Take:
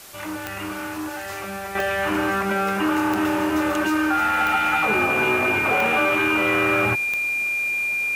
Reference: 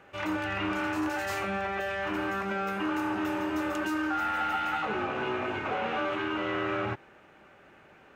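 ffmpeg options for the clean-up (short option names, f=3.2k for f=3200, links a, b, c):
-af "adeclick=t=4,bandreject=f=2.4k:w=30,afwtdn=0.0079,asetnsamples=n=441:p=0,asendcmd='1.75 volume volume -9dB',volume=0dB"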